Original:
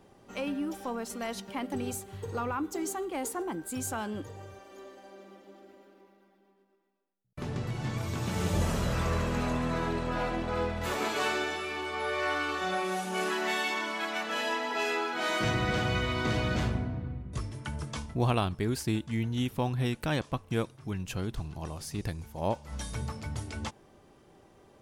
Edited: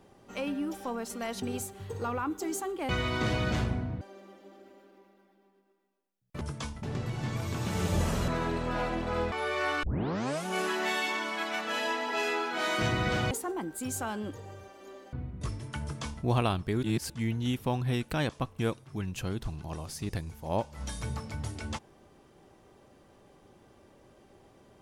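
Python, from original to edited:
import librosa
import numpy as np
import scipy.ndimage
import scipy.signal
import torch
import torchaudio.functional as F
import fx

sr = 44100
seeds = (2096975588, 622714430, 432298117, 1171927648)

y = fx.edit(x, sr, fx.cut(start_s=1.42, length_s=0.33),
    fx.swap(start_s=3.22, length_s=1.82, other_s=15.93, other_length_s=1.12),
    fx.cut(start_s=8.89, length_s=0.8),
    fx.cut(start_s=10.73, length_s=1.21),
    fx.tape_start(start_s=12.45, length_s=0.63),
    fx.duplicate(start_s=17.74, length_s=0.42, to_s=7.44),
    fx.reverse_span(start_s=18.75, length_s=0.27), tone=tone)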